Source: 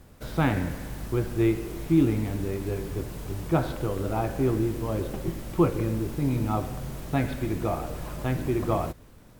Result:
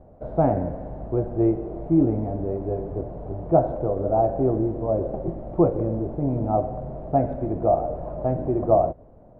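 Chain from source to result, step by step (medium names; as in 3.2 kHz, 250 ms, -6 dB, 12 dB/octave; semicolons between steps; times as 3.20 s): resonant low-pass 660 Hz, resonance Q 4.7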